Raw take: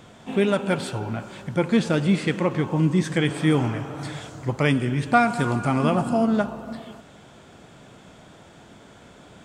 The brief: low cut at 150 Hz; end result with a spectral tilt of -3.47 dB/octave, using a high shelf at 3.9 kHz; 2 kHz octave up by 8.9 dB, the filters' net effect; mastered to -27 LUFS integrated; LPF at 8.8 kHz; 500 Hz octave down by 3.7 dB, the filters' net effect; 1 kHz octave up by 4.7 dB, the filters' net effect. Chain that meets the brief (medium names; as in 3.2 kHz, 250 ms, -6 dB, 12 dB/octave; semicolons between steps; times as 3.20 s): high-pass 150 Hz; low-pass 8.8 kHz; peaking EQ 500 Hz -8 dB; peaking EQ 1 kHz +6.5 dB; peaking EQ 2 kHz +9 dB; treble shelf 3.9 kHz +4.5 dB; trim -5.5 dB